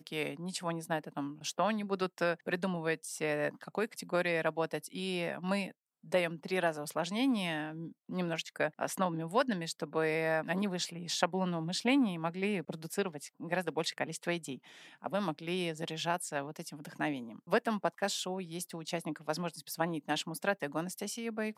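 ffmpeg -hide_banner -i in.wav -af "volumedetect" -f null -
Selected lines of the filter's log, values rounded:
mean_volume: -35.1 dB
max_volume: -11.6 dB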